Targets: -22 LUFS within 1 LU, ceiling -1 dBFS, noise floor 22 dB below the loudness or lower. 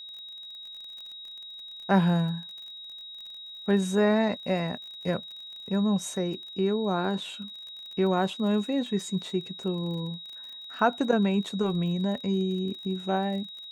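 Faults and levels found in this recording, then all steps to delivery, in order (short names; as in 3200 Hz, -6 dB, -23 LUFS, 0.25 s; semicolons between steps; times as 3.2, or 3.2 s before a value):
ticks 34/s; steady tone 3800 Hz; tone level -40 dBFS; loudness -28.0 LUFS; peak -10.0 dBFS; loudness target -22.0 LUFS
-> de-click; notch 3800 Hz, Q 30; gain +6 dB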